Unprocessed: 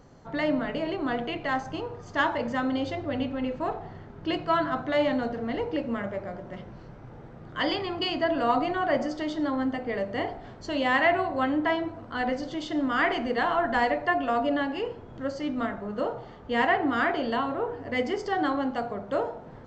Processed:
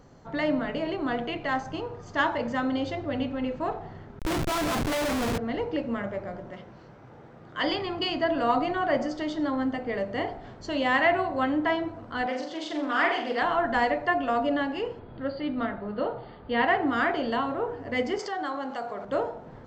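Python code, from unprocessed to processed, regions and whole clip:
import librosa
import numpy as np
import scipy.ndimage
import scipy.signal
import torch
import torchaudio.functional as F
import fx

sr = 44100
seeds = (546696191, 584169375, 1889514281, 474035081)

y = fx.chain(x, sr, fx.schmitt(flips_db=-34.5),
    fx.doppler_dist(depth_ms=0.42), at=(4.19, 5.38))
y = fx.chain(y, sr, fx.highpass(hz=54.0, slope=12),
    fx.low_shelf(hz=230.0, db=-7.5), at=(6.51, 7.64))
y = fx.chain(y, sr, fx.highpass(hz=370.0, slope=12),
    fx.room_flutter(wall_m=7.4, rt60_s=0.44),
    fx.doppler_dist(depth_ms=0.16), at=(12.26, 13.42))
y = fx.chain(y, sr, fx.brickwall_lowpass(high_hz=4900.0),
    fx.notch(hz=1100.0, q=25.0), at=(14.99, 16.68))
y = fx.chain(y, sr, fx.highpass(hz=950.0, slope=6),
    fx.dynamic_eq(hz=2700.0, q=0.7, threshold_db=-46.0, ratio=4.0, max_db=-6),
    fx.env_flatten(amount_pct=50), at=(18.19, 19.05))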